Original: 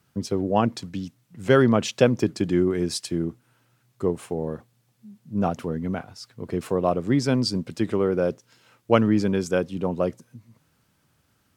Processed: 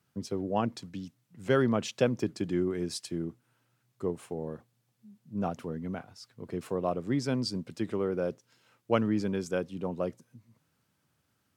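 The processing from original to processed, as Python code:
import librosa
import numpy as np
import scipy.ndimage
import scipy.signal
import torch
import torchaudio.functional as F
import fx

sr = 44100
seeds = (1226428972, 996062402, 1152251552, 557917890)

y = scipy.signal.sosfilt(scipy.signal.butter(2, 77.0, 'highpass', fs=sr, output='sos'), x)
y = y * 10.0 ** (-8.0 / 20.0)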